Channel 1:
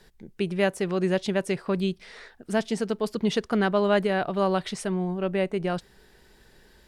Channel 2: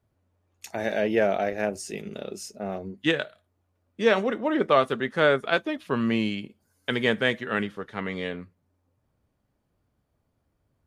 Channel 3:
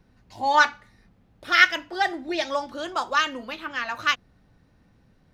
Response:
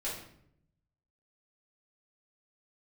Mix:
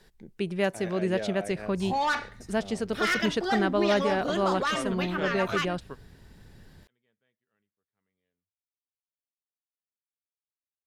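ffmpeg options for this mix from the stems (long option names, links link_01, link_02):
-filter_complex "[0:a]volume=-3dB,asplit=2[link_01][link_02];[1:a]equalizer=frequency=93:width=1.7:gain=7.5,volume=-13dB[link_03];[2:a]lowshelf=frequency=170:gain=10,adelay=1500,volume=0.5dB[link_04];[link_02]apad=whole_len=479200[link_05];[link_03][link_05]sidechaingate=range=-40dB:threshold=-49dB:ratio=16:detection=peak[link_06];[link_06][link_04]amix=inputs=2:normalize=0,asoftclip=type=tanh:threshold=-14.5dB,alimiter=limit=-21dB:level=0:latency=1:release=16,volume=0dB[link_07];[link_01][link_07]amix=inputs=2:normalize=0"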